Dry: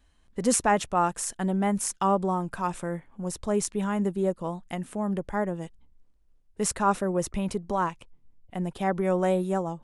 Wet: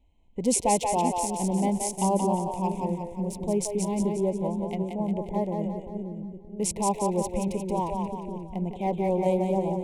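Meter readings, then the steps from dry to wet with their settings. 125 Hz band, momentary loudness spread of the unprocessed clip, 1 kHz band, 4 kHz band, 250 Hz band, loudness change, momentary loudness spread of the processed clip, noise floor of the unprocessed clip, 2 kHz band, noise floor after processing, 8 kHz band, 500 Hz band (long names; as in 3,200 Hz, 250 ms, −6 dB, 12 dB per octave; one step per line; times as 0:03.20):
+1.5 dB, 10 LU, −0.5 dB, −0.5 dB, +1.5 dB, 0.0 dB, 9 LU, −62 dBFS, −9.5 dB, −43 dBFS, +0.5 dB, +1.0 dB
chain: adaptive Wiener filter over 9 samples
elliptic band-stop filter 950–2,200 Hz, stop band 60 dB
echo with a time of its own for lows and highs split 400 Hz, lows 579 ms, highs 177 ms, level −4 dB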